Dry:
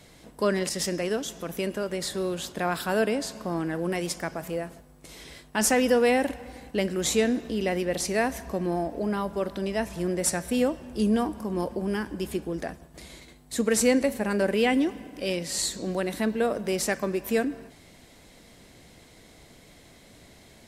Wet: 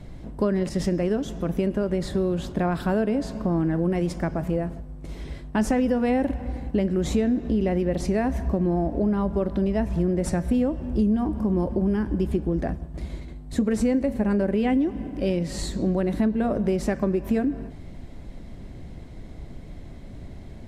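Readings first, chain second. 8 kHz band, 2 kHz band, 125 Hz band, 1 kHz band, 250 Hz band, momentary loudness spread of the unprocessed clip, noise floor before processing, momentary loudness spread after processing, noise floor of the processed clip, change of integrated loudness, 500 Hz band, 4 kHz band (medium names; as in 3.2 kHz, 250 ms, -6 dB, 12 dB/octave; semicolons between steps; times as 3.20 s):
-11.5 dB, -6.0 dB, +9.0 dB, -1.0 dB, +5.5 dB, 11 LU, -53 dBFS, 20 LU, -40 dBFS, +2.5 dB, +0.5 dB, -8.0 dB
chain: tilt EQ -4 dB/octave; band-stop 470 Hz, Q 12; compression 5:1, threshold -22 dBFS, peak gain reduction 10 dB; trim +2.5 dB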